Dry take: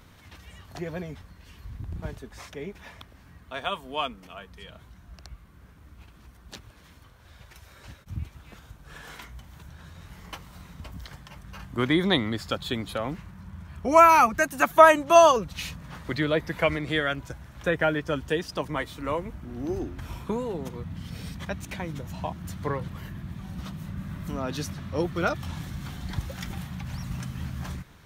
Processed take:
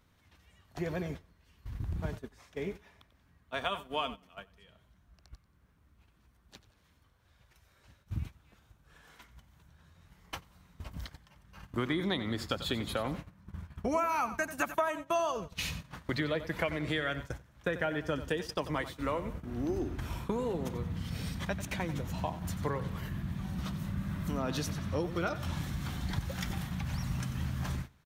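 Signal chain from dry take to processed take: compression 6:1, threshold -29 dBFS, peak gain reduction 19.5 dB; on a send: feedback delay 92 ms, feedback 44%, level -13 dB; on the sum: gate -39 dBFS, range -15 dB

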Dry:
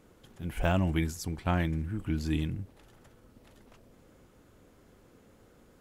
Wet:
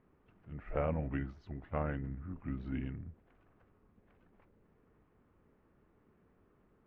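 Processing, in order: harmony voices +3 st -13 dB; dynamic bell 590 Hz, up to +6 dB, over -45 dBFS, Q 0.88; four-pole ladder low-pass 3.1 kHz, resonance 20%; wide varispeed 0.846×; trim -5 dB

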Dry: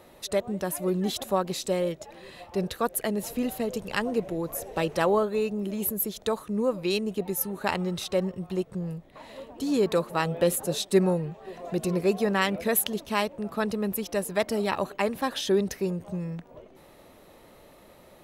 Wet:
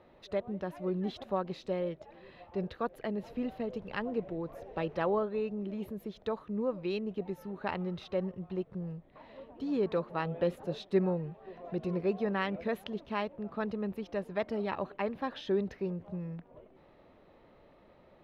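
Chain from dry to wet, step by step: distance through air 300 m; trim -6 dB

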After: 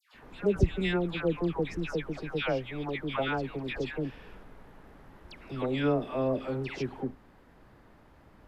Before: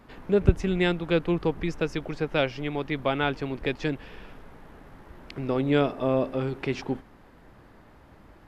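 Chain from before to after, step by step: phase dispersion lows, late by 146 ms, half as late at 1.3 kHz; trim -4.5 dB

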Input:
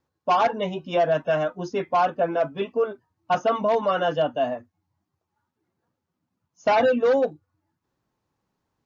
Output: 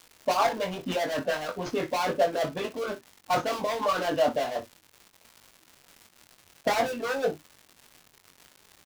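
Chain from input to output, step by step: dead-time distortion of 0.13 ms; treble shelf 5.5 kHz -10.5 dB; in parallel at -2 dB: compressor with a negative ratio -33 dBFS, ratio -1; on the sum: harmonic-percussive split harmonic -15 dB; crackle 180 per s -38 dBFS; on a send: early reflections 22 ms -5.5 dB, 60 ms -15 dB

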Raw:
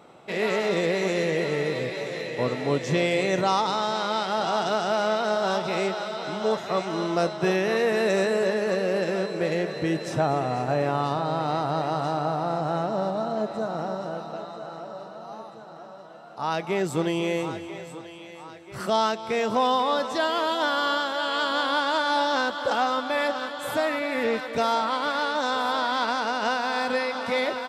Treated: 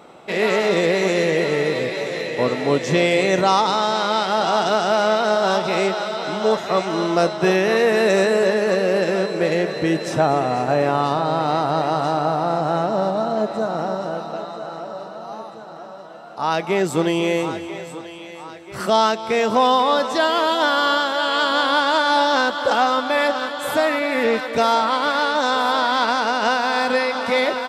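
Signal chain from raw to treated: peaking EQ 120 Hz -5.5 dB 0.77 oct; trim +6.5 dB

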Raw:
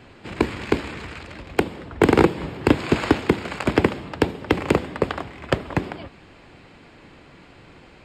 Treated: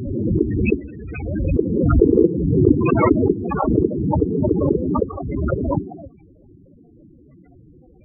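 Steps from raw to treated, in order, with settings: loudest bins only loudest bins 8; swell ahead of each attack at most 31 dB/s; trim +3 dB

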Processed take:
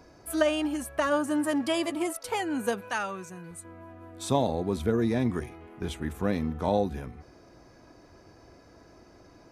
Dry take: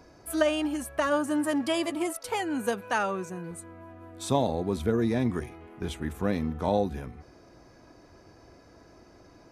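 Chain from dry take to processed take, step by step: 2.89–3.65 s: peaking EQ 380 Hz -7.5 dB 2.9 oct

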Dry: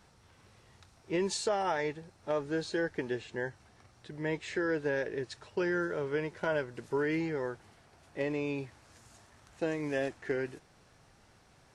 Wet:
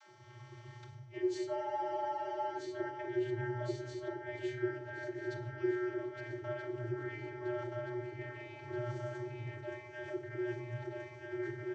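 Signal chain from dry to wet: backward echo that repeats 639 ms, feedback 65%, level -5.5 dB; reverse; compression 6:1, threshold -45 dBFS, peak gain reduction 18.5 dB; reverse; vocoder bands 32, square 122 Hz; three bands offset in time highs, mids, lows 40/150 ms, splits 160/590 Hz; on a send at -6.5 dB: reverberation RT60 0.70 s, pre-delay 3 ms; on the sum: spectral freeze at 1.59 s, 0.98 s; trim +12 dB

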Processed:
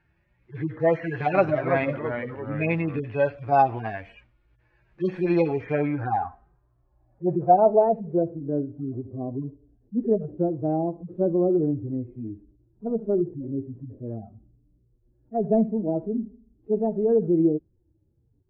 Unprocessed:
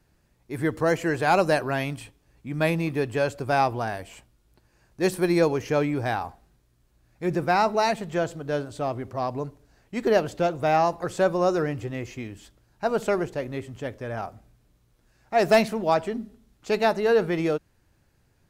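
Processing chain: harmonic-percussive separation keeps harmonic; dynamic bell 700 Hz, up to +5 dB, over -34 dBFS, Q 2.2; low-pass sweep 2.2 kHz -> 320 Hz, 5.46–8.58 s; 0.93–3.00 s: ever faster or slower copies 273 ms, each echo -2 st, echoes 3, each echo -6 dB

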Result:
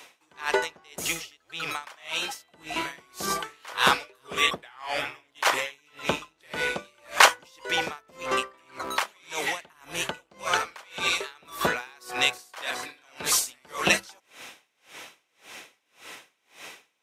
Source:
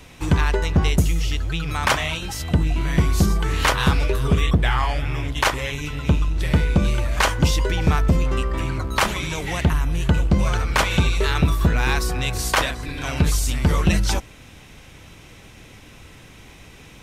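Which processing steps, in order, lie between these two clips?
high-pass 560 Hz 12 dB/octave; level rider gain up to 6 dB; logarithmic tremolo 1.8 Hz, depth 34 dB; trim +1.5 dB

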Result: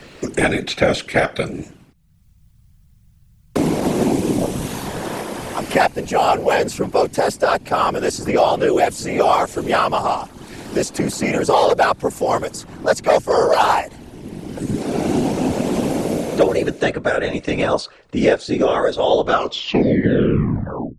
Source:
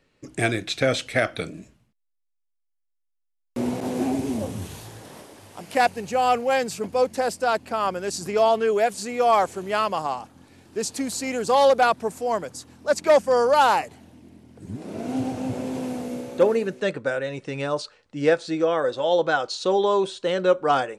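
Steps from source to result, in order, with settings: tape stop on the ending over 1.80 s; whisper effect; three bands compressed up and down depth 70%; trim +5 dB

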